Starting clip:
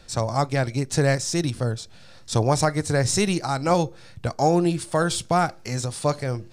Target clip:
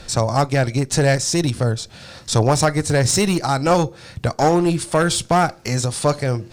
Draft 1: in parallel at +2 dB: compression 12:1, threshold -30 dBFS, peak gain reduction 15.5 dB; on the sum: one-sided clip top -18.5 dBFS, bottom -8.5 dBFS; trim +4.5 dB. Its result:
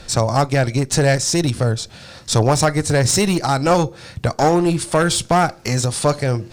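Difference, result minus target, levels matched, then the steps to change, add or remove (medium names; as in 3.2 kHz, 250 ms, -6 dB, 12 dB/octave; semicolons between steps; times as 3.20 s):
compression: peak gain reduction -7 dB
change: compression 12:1, threshold -37.5 dBFS, peak gain reduction 22.5 dB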